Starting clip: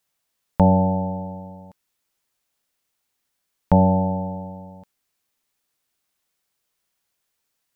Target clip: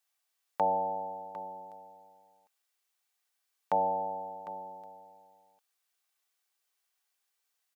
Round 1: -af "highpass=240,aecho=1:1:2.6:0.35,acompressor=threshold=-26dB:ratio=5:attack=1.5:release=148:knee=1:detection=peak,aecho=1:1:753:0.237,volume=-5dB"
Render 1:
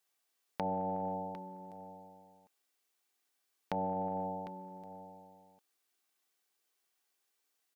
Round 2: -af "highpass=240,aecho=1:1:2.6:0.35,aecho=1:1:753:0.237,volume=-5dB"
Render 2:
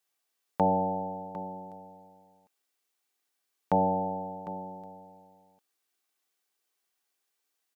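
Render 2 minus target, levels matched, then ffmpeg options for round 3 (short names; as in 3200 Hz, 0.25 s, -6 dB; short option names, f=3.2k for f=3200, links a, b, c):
250 Hz band +11.0 dB
-af "highpass=630,aecho=1:1:2.6:0.35,aecho=1:1:753:0.237,volume=-5dB"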